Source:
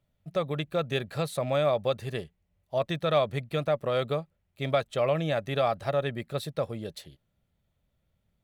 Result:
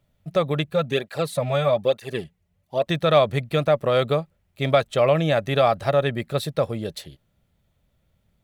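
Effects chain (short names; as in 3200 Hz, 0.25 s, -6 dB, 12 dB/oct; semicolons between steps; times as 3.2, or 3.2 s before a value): 0.64–2.87 tape flanging out of phase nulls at 1.1 Hz, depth 4.1 ms; gain +7.5 dB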